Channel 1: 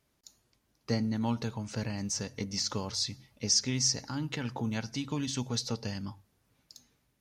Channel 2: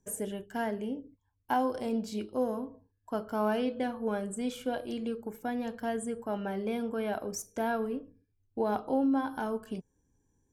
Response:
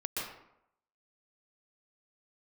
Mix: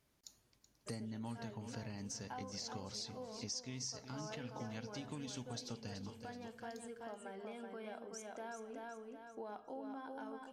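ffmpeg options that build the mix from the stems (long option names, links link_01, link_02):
-filter_complex "[0:a]volume=-2.5dB,asplit=2[link_01][link_02];[link_02]volume=-14dB[link_03];[1:a]lowpass=frequency=9100:width=0.5412,lowpass=frequency=9100:width=1.3066,lowshelf=frequency=320:gain=-10,bandreject=frequency=50:width_type=h:width=6,bandreject=frequency=100:width_type=h:width=6,bandreject=frequency=150:width_type=h:width=6,bandreject=frequency=200:width_type=h:width=6,adelay=800,volume=-7.5dB,asplit=2[link_04][link_05];[link_05]volume=-4.5dB[link_06];[link_03][link_06]amix=inputs=2:normalize=0,aecho=0:1:377|754|1131|1508:1|0.3|0.09|0.027[link_07];[link_01][link_04][link_07]amix=inputs=3:normalize=0,acompressor=threshold=-46dB:ratio=3"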